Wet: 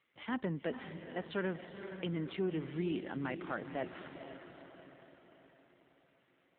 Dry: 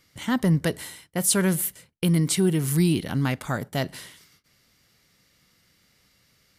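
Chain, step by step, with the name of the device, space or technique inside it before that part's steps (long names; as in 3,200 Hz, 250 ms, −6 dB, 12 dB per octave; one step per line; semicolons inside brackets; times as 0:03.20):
feedback delay with all-pass diffusion 471 ms, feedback 52%, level −10 dB
0:02.34–0:03.83: dynamic equaliser 6,100 Hz, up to −4 dB, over −48 dBFS, Q 1.4
telephone (band-pass filter 310–3,300 Hz; soft clipping −18 dBFS, distortion −18 dB; level −7 dB; AMR narrowband 7.4 kbit/s 8,000 Hz)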